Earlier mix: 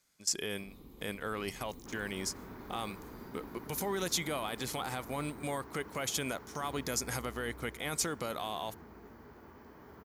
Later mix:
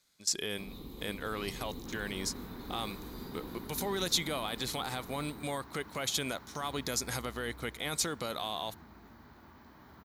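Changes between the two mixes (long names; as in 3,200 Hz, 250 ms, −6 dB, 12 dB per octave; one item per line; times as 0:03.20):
first sound +7.5 dB
second sound: add parametric band 440 Hz −11 dB 0.55 octaves
master: add parametric band 3,900 Hz +9.5 dB 0.37 octaves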